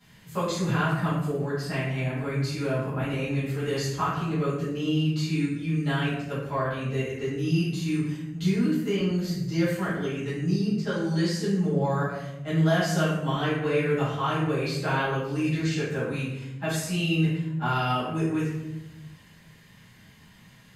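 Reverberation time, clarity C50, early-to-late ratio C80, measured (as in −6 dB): 0.95 s, 1.0 dB, 4.5 dB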